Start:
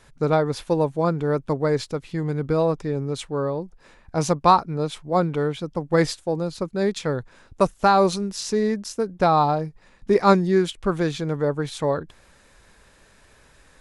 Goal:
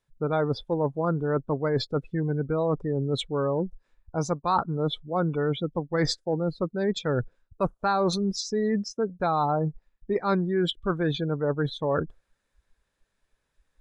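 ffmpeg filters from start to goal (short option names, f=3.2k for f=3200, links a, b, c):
-af "equalizer=f=3.5k:w=6.5:g=3.5,afftdn=nr=31:nf=-32,areverse,acompressor=threshold=-31dB:ratio=5,areverse,adynamicequalizer=threshold=0.00141:dfrequency=1500:dqfactor=3.2:tfrequency=1500:tqfactor=3.2:attack=5:release=100:ratio=0.375:range=2:mode=boostabove:tftype=bell,volume=7dB"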